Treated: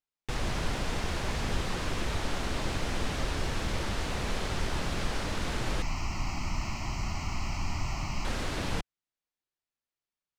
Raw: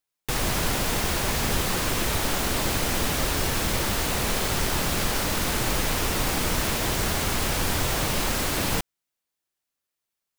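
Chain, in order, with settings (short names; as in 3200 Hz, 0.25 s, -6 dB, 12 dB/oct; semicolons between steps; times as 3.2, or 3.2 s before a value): low shelf 82 Hz +5.5 dB; 5.82–8.25 fixed phaser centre 2400 Hz, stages 8; air absorption 77 m; gain -7 dB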